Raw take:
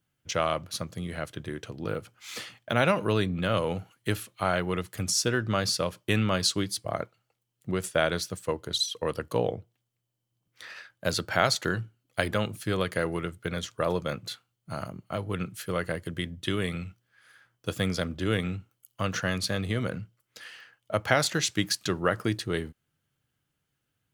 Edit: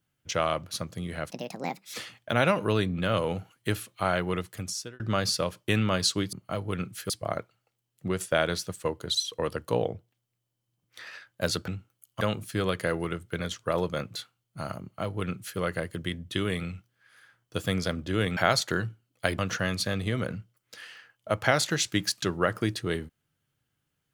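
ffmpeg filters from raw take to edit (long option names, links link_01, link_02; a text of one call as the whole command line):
ffmpeg -i in.wav -filter_complex "[0:a]asplit=10[link_01][link_02][link_03][link_04][link_05][link_06][link_07][link_08][link_09][link_10];[link_01]atrim=end=1.304[link_11];[link_02]atrim=start=1.3:end=2.34,asetpts=PTS-STARTPTS,asetrate=71883,aresample=44100,atrim=end_sample=28137,asetpts=PTS-STARTPTS[link_12];[link_03]atrim=start=2.336:end=5.4,asetpts=PTS-STARTPTS,afade=type=out:start_time=2.434:duration=0.63[link_13];[link_04]atrim=start=5.4:end=6.732,asetpts=PTS-STARTPTS,afade=type=in:duration=0.004:curve=hsin[link_14];[link_05]atrim=start=14.938:end=15.712[link_15];[link_06]atrim=start=6.728:end=11.312[link_16];[link_07]atrim=start=18.488:end=19.022[link_17];[link_08]atrim=start=12.328:end=18.492[link_18];[link_09]atrim=start=11.308:end=12.332[link_19];[link_10]atrim=start=19.018[link_20];[link_11][link_12]acrossfade=duration=0.004:curve1=hsin:curve2=hsin[link_21];[link_13][link_14]concat=n=2:v=0:a=1[link_22];[link_21][link_22]acrossfade=duration=0.004:curve1=hsin:curve2=hsin[link_23];[link_23][link_15]acrossfade=duration=0.004:curve1=hsin:curve2=hsin[link_24];[link_24][link_16]acrossfade=duration=0.004:curve1=hsin:curve2=hsin[link_25];[link_25][link_17]acrossfade=duration=0.004:curve1=hsin:curve2=hsin[link_26];[link_26][link_18]acrossfade=duration=0.004:curve1=hsin:curve2=hsin[link_27];[link_27][link_19]acrossfade=duration=0.004:curve1=hsin:curve2=hsin[link_28];[link_28][link_20]acrossfade=duration=0.004:curve1=hsin:curve2=hsin" out.wav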